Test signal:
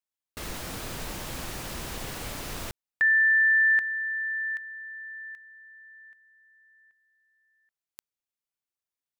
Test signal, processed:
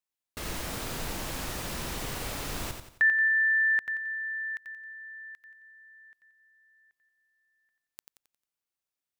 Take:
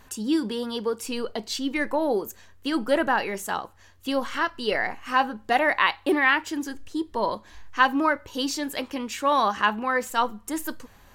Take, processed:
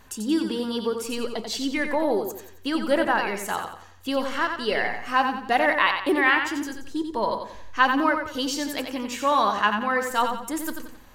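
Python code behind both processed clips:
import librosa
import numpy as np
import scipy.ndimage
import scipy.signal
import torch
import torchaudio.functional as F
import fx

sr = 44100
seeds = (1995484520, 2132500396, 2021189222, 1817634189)

y = fx.echo_feedback(x, sr, ms=89, feedback_pct=39, wet_db=-6.5)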